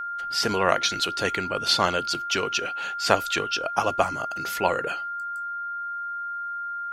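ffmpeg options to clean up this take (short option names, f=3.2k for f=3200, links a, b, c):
-af "bandreject=f=1.4k:w=30"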